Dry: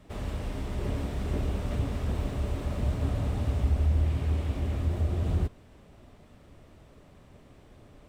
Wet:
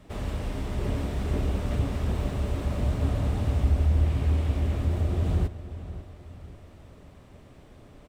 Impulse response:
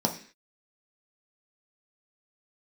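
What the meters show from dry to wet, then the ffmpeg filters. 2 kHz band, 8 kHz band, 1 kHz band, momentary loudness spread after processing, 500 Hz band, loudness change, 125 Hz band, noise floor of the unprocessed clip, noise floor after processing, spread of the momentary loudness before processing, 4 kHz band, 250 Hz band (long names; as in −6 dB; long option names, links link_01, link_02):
+2.5 dB, +2.5 dB, +2.5 dB, 16 LU, +2.5 dB, +2.5 dB, +2.5 dB, −55 dBFS, −51 dBFS, 8 LU, +2.5 dB, +3.0 dB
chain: -filter_complex "[0:a]asplit=2[link_01][link_02];[link_02]adelay=542,lowpass=frequency=3200:poles=1,volume=-13.5dB,asplit=2[link_03][link_04];[link_04]adelay=542,lowpass=frequency=3200:poles=1,volume=0.43,asplit=2[link_05][link_06];[link_06]adelay=542,lowpass=frequency=3200:poles=1,volume=0.43,asplit=2[link_07][link_08];[link_08]adelay=542,lowpass=frequency=3200:poles=1,volume=0.43[link_09];[link_01][link_03][link_05][link_07][link_09]amix=inputs=5:normalize=0,volume=2.5dB"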